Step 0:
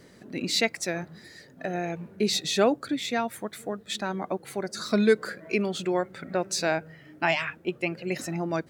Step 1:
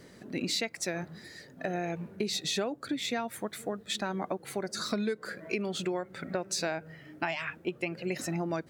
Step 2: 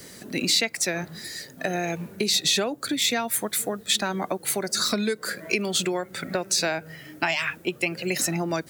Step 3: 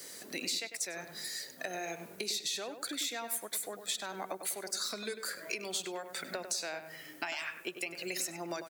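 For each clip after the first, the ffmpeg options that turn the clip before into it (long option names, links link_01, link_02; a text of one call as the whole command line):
ffmpeg -i in.wav -af "acompressor=threshold=-28dB:ratio=12" out.wav
ffmpeg -i in.wav -filter_complex "[0:a]acrossover=split=260|1000|4000[link_01][link_02][link_03][link_04];[link_04]alimiter=level_in=9dB:limit=-24dB:level=0:latency=1:release=378,volume=-9dB[link_05];[link_01][link_02][link_03][link_05]amix=inputs=4:normalize=0,crystalizer=i=4:c=0,volume=5dB" out.wav
ffmpeg -i in.wav -filter_complex "[0:a]bass=frequency=250:gain=-15,treble=frequency=4000:gain=5,acompressor=threshold=-31dB:ratio=3,asplit=2[link_01][link_02];[link_02]adelay=99,lowpass=frequency=2600:poles=1,volume=-8.5dB,asplit=2[link_03][link_04];[link_04]adelay=99,lowpass=frequency=2600:poles=1,volume=0.36,asplit=2[link_05][link_06];[link_06]adelay=99,lowpass=frequency=2600:poles=1,volume=0.36,asplit=2[link_07][link_08];[link_08]adelay=99,lowpass=frequency=2600:poles=1,volume=0.36[link_09];[link_01][link_03][link_05][link_07][link_09]amix=inputs=5:normalize=0,volume=-5.5dB" out.wav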